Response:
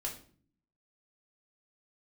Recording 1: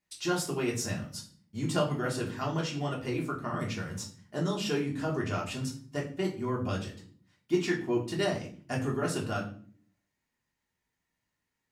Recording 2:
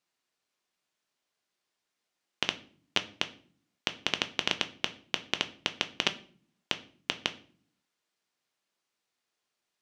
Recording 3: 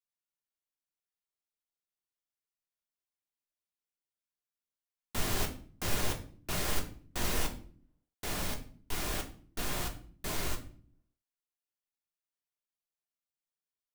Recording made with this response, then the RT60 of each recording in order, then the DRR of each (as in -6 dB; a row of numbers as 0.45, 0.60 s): 1; 0.50, 0.50, 0.50 s; -2.5, 8.0, 2.5 dB